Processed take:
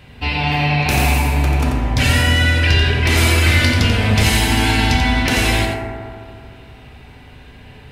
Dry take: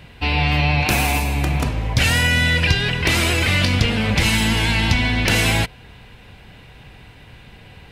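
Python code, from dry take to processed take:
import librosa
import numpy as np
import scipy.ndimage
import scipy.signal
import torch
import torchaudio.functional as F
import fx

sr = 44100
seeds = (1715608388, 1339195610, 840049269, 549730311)

y = fx.high_shelf(x, sr, hz=5700.0, db=6.0, at=(3.17, 5.23))
y = y + 10.0 ** (-6.5 / 20.0) * np.pad(y, (int(88 * sr / 1000.0), 0))[:len(y)]
y = fx.rev_fdn(y, sr, rt60_s=2.2, lf_ratio=1.05, hf_ratio=0.25, size_ms=23.0, drr_db=0.5)
y = y * librosa.db_to_amplitude(-1.5)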